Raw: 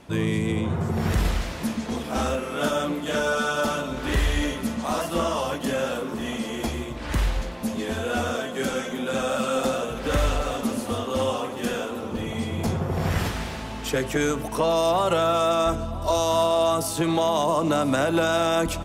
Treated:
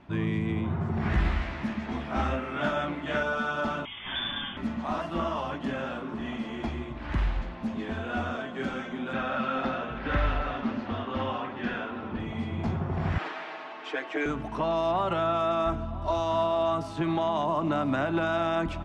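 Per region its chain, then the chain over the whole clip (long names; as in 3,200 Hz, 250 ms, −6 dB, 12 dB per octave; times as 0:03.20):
0:01.01–0:03.23: parametric band 2,000 Hz +4.5 dB 0.67 octaves + double-tracking delay 15 ms −4 dB
0:03.85–0:04.57: voice inversion scrambler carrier 3,500 Hz + high-frequency loss of the air 170 metres
0:09.13–0:12.20: low-pass filter 5,400 Hz 24 dB per octave + parametric band 1,700 Hz +5.5 dB 1.1 octaves + notch filter 1,200 Hz, Q 20
0:13.18–0:14.26: high-pass filter 360 Hz 24 dB per octave + high-frequency loss of the air 67 metres + comb filter 6.4 ms, depth 93%
whole clip: low-pass filter 2,500 Hz 12 dB per octave; parametric band 490 Hz −11.5 dB 0.31 octaves; level −3.5 dB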